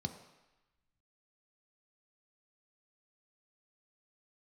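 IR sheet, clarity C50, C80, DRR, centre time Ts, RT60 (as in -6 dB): 10.0 dB, 11.5 dB, 6.0 dB, 15 ms, 1.0 s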